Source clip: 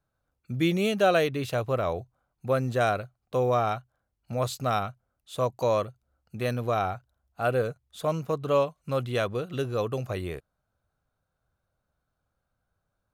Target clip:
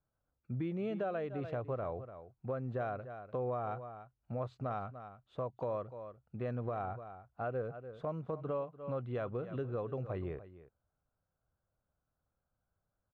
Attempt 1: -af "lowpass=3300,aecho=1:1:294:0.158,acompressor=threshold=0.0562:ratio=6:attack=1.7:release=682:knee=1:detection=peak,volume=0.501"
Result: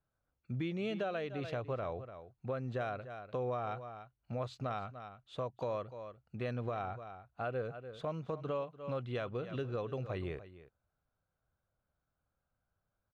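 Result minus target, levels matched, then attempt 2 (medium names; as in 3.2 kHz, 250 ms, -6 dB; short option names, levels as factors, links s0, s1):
4 kHz band +12.0 dB
-af "lowpass=1400,aecho=1:1:294:0.158,acompressor=threshold=0.0562:ratio=6:attack=1.7:release=682:knee=1:detection=peak,volume=0.501"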